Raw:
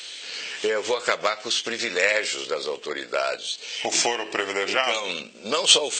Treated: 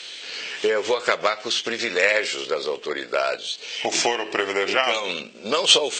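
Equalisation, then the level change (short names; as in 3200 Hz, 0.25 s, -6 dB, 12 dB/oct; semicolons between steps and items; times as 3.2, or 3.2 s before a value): air absorption 63 m; bell 390 Hz +2.5 dB 0.21 oct; +2.5 dB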